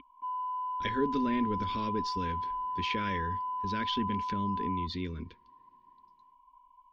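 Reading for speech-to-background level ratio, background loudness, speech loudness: -0.5 dB, -35.0 LUFS, -35.5 LUFS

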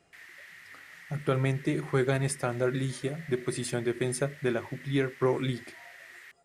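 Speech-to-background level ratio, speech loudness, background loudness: 17.5 dB, -30.5 LUFS, -48.0 LUFS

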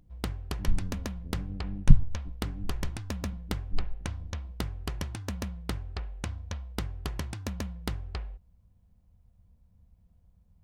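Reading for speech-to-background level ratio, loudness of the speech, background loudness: 4.5 dB, -33.0 LUFS, -37.5 LUFS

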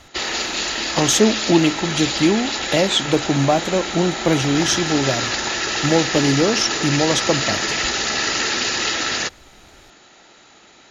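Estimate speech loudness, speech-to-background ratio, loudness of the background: -19.5 LUFS, 2.0 dB, -21.5 LUFS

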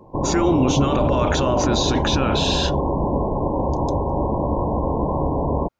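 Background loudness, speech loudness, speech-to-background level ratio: -22.5 LUFS, -22.0 LUFS, 0.5 dB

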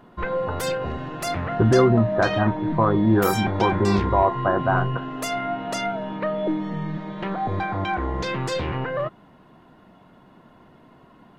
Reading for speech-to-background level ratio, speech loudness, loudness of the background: 6.0 dB, -21.0 LUFS, -27.0 LUFS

